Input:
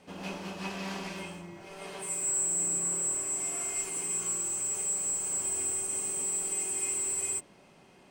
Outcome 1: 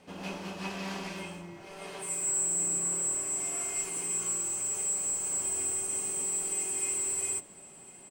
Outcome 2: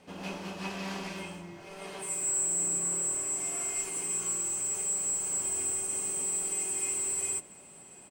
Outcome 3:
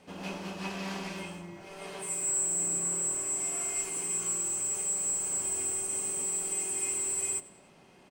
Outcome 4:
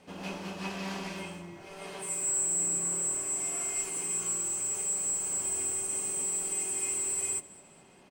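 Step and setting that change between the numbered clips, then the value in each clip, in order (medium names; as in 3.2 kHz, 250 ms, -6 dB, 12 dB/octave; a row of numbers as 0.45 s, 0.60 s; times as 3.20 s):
feedback delay, time: 1055 ms, 682 ms, 98 ms, 207 ms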